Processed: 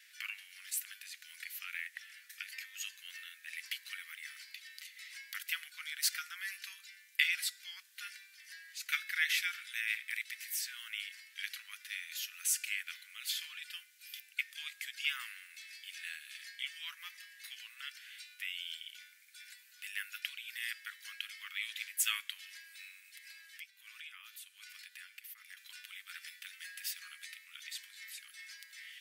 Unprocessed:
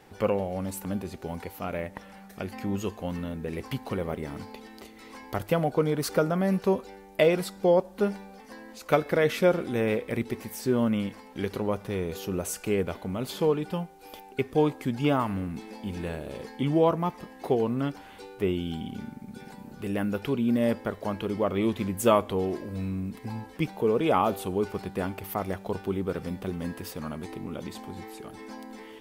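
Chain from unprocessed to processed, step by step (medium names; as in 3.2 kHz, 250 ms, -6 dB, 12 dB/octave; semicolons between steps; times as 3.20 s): steep high-pass 1.7 kHz 48 dB/octave; 23.00–25.57 s: compression 6:1, threshold -51 dBFS, peak gain reduction 17.5 dB; trim +2.5 dB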